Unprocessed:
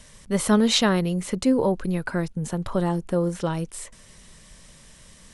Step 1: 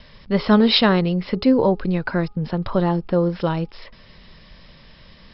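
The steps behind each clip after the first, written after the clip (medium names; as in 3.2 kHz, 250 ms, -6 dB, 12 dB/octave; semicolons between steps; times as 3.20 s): Chebyshev low-pass 5.3 kHz, order 10; de-hum 413.6 Hz, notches 3; trim +5 dB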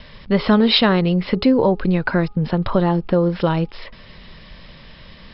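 Chebyshev low-pass 3.8 kHz, order 2; compression 2:1, threshold -20 dBFS, peak gain reduction 6 dB; trim +6 dB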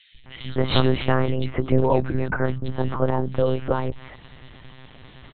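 three bands offset in time highs, lows, mids 140/260 ms, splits 150/2400 Hz; monotone LPC vocoder at 8 kHz 130 Hz; trim -2.5 dB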